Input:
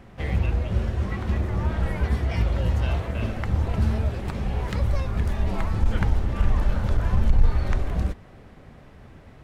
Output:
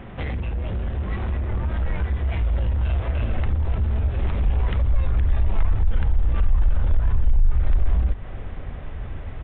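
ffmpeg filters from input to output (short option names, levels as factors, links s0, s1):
-filter_complex "[0:a]apsyclip=2.82,acompressor=threshold=0.1:ratio=6,aresample=8000,asoftclip=type=tanh:threshold=0.0708,aresample=44100,asplit=2[s0][s1];[s1]adelay=80,highpass=300,lowpass=3400,asoftclip=type=hard:threshold=0.0355,volume=0.0891[s2];[s0][s2]amix=inputs=2:normalize=0,asubboost=boost=4.5:cutoff=78"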